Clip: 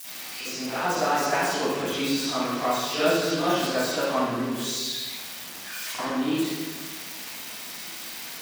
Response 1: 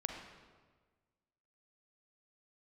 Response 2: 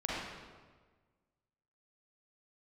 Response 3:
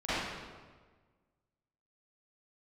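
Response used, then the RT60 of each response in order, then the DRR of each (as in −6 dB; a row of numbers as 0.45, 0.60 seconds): 3; 1.5, 1.5, 1.5 seconds; 2.5, −6.5, −16.5 decibels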